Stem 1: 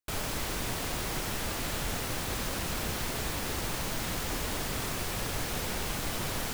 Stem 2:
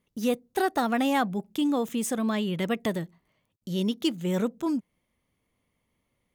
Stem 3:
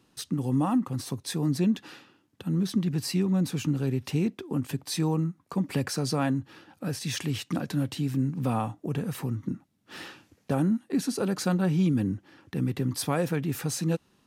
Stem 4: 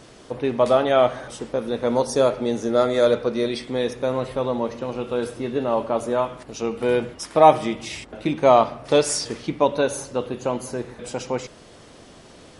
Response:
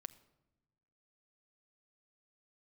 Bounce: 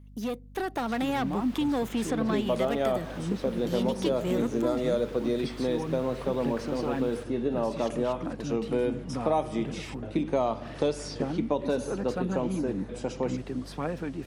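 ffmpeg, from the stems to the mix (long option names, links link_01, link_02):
-filter_complex "[0:a]acrossover=split=4300[link_01][link_02];[link_02]acompressor=threshold=-53dB:ratio=4:attack=1:release=60[link_03];[link_01][link_03]amix=inputs=2:normalize=0,adelay=700,volume=-15dB[link_04];[1:a]asoftclip=type=tanh:threshold=-24.5dB,volume=0.5dB[link_05];[2:a]aemphasis=mode=reproduction:type=75fm,aphaser=in_gain=1:out_gain=1:delay=4.1:decay=0.39:speed=1.9:type=triangular,adelay=700,volume=-8.5dB[link_06];[3:a]lowshelf=frequency=450:gain=12,adelay=1900,volume=-12dB[link_07];[link_04][link_05][link_06][link_07]amix=inputs=4:normalize=0,acrossover=split=170|5000[link_08][link_09][link_10];[link_08]acompressor=threshold=-54dB:ratio=4[link_11];[link_09]acompressor=threshold=-28dB:ratio=4[link_12];[link_10]acompressor=threshold=-54dB:ratio=4[link_13];[link_11][link_12][link_13]amix=inputs=3:normalize=0,aeval=exprs='val(0)+0.00398*(sin(2*PI*50*n/s)+sin(2*PI*2*50*n/s)/2+sin(2*PI*3*50*n/s)/3+sin(2*PI*4*50*n/s)/4+sin(2*PI*5*50*n/s)/5)':channel_layout=same,dynaudnorm=framelen=200:gausssize=9:maxgain=4dB"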